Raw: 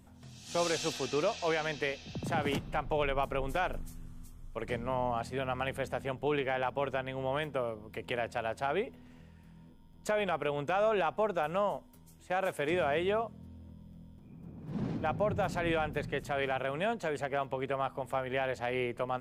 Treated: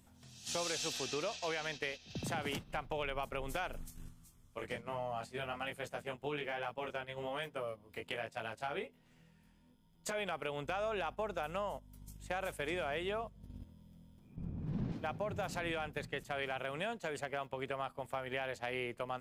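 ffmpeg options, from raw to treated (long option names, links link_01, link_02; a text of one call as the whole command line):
ffmpeg -i in.wav -filter_complex "[0:a]asplit=3[link_01][link_02][link_03];[link_01]afade=type=out:start_time=4.13:duration=0.02[link_04];[link_02]flanger=delay=17.5:depth=3.4:speed=1.2,afade=type=in:start_time=4.13:duration=0.02,afade=type=out:start_time=10.14:duration=0.02[link_05];[link_03]afade=type=in:start_time=10.14:duration=0.02[link_06];[link_04][link_05][link_06]amix=inputs=3:normalize=0,asettb=1/sr,asplit=3[link_07][link_08][link_09];[link_07]atrim=end=10.644[link_10];[link_08]atrim=start=10.64:end=13.64,asetpts=PTS-STARTPTS,afade=type=in:duration=0.004:curve=qsin,afade=type=out:start_time=2.996:duration=0.004:curve=qsin,aeval=exprs='val(0)+0.00562*(sin(2*PI*50*n/s)+sin(2*PI*2*50*n/s)/2+sin(2*PI*3*50*n/s)/3+sin(2*PI*4*50*n/s)/4+sin(2*PI*5*50*n/s)/5)':channel_layout=same[link_11];[link_09]atrim=start=13.636[link_12];[link_10][link_11]acrossfade=duration=0.004:curve1=hsin:curve2=qsin[link_13];[link_13][link_12]acrossfade=duration=0.004:curve1=qsin:curve2=hsin,asettb=1/sr,asplit=3[link_14][link_15][link_16];[link_14]atrim=end=14.364[link_17];[link_15]atrim=start=14.36:end=14.92,asetpts=PTS-STARTPTS,afade=type=in:duration=0.004:curve=qsin,afade=type=out:start_time=0.556:duration=0.004:curve=qsin,aemphasis=mode=reproduction:type=bsi[link_18];[link_16]atrim=start=14.916[link_19];[link_17][link_18]acrossfade=duration=0.004:curve1=hsin:curve2=qsin[link_20];[link_20][link_19]acrossfade=duration=0.004:curve1=qsin:curve2=hsin,highshelf=frequency=2000:gain=8.5,acompressor=threshold=-43dB:ratio=2.5,agate=range=-10dB:threshold=-45dB:ratio=16:detection=peak,volume=2.5dB" out.wav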